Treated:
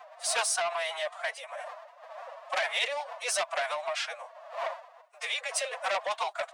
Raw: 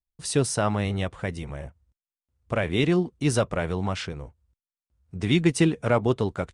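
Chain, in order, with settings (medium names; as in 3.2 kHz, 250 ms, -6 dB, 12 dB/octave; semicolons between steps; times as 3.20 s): wind noise 540 Hz -41 dBFS; peak limiter -15 dBFS, peak gain reduction 6 dB; steep high-pass 390 Hz 96 dB/octave; formant-preserving pitch shift +8.5 st; transformer saturation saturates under 3.1 kHz; trim +2 dB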